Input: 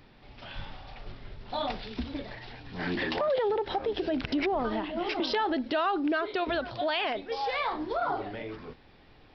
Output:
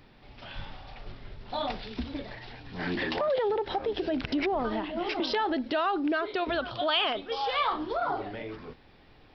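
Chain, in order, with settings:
0:06.58–0:07.91: thirty-one-band graphic EQ 1,250 Hz +9 dB, 2,000 Hz −4 dB, 3,150 Hz +9 dB

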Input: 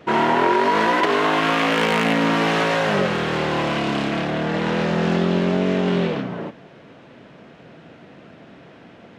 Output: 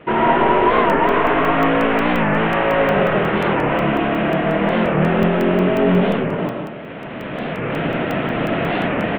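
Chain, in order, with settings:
variable-slope delta modulation 16 kbit/s
camcorder AGC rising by 12 dB per second
on a send: single-tap delay 166 ms −11.5 dB
on the sum: comb and all-pass reverb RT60 0.62 s, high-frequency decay 0.6×, pre-delay 70 ms, DRR 1 dB
regular buffer underruns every 0.18 s, samples 64, zero, from 0:00.91
wow of a warped record 45 rpm, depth 160 cents
level +2.5 dB

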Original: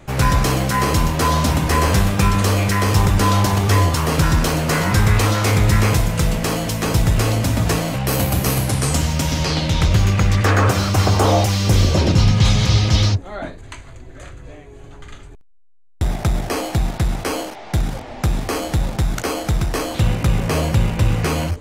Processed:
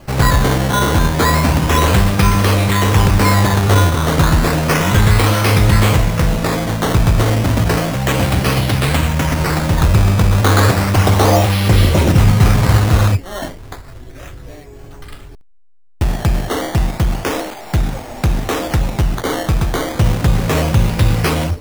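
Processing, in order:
sample-and-hold swept by an LFO 12×, swing 100% 0.32 Hz
level +3.5 dB

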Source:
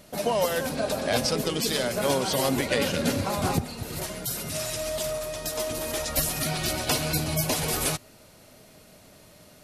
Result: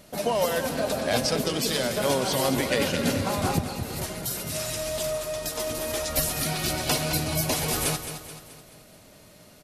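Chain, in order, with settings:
repeating echo 215 ms, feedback 48%, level −10 dB

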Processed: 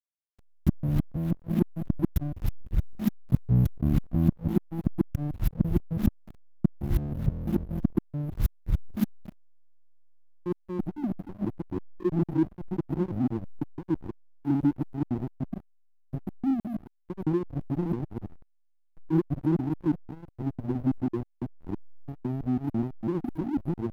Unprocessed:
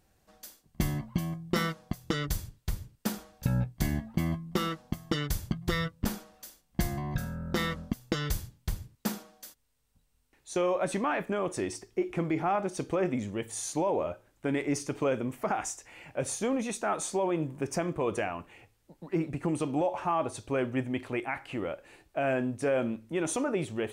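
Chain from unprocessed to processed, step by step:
reversed piece by piece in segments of 166 ms
linear-phase brick-wall band-stop 370–11,000 Hz
slack as between gear wheels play −31.5 dBFS
level +7.5 dB

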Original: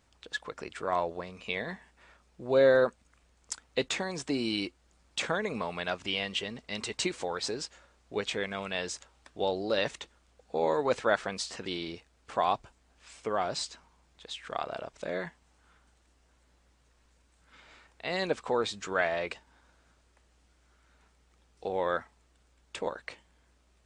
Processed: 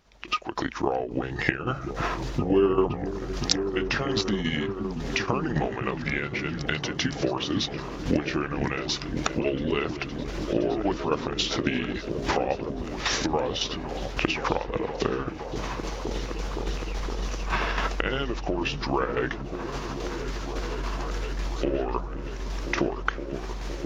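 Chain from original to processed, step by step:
pitch shift by two crossfaded delay taps −5.5 semitones
camcorder AGC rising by 63 dB per second
shaped tremolo saw down 3.6 Hz, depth 60%
echo whose low-pass opens from repeat to repeat 516 ms, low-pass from 200 Hz, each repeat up 1 octave, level −3 dB
level +4.5 dB

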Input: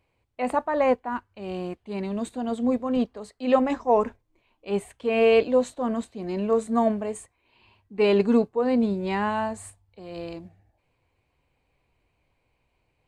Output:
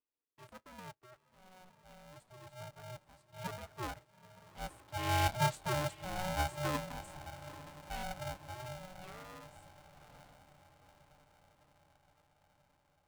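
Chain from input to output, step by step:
source passing by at 0:05.84, 8 m/s, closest 3.4 metres
feedback delay with all-pass diffusion 883 ms, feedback 58%, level −15 dB
ring modulator with a square carrier 370 Hz
level −7.5 dB

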